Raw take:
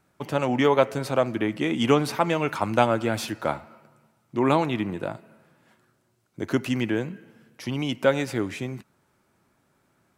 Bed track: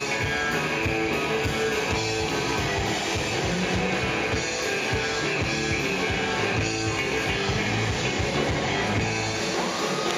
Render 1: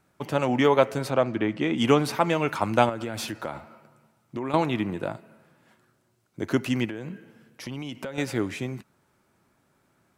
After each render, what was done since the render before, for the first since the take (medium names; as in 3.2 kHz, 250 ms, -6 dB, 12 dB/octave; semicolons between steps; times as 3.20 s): 1.10–1.78 s: distance through air 83 m; 2.89–4.54 s: compression, threshold -27 dBFS; 6.85–8.18 s: compression 12:1, threshold -30 dBFS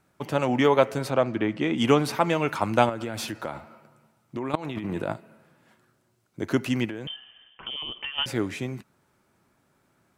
4.55–5.14 s: compressor with a negative ratio -32 dBFS; 7.07–8.26 s: frequency inversion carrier 3.3 kHz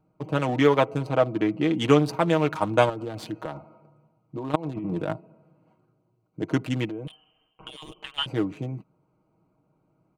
local Wiener filter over 25 samples; comb 6.4 ms, depth 60%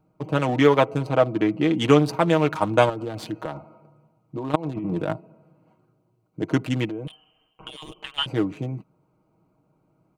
trim +2.5 dB; peak limiter -3 dBFS, peak gain reduction 1 dB